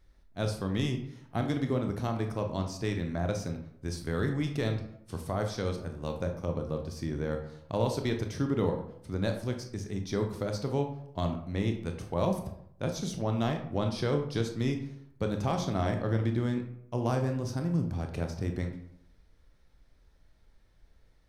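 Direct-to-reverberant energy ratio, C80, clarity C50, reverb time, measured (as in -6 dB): 4.5 dB, 11.5 dB, 8.0 dB, 0.70 s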